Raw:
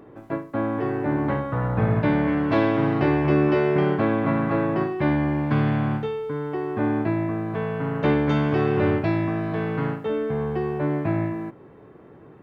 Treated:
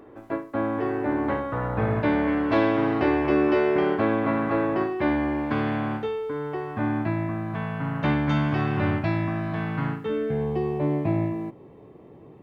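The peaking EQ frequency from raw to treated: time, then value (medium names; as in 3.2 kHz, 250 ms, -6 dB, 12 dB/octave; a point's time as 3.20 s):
peaking EQ -14.5 dB 0.49 oct
6.29 s 150 Hz
6.83 s 430 Hz
9.83 s 430 Hz
10.52 s 1.5 kHz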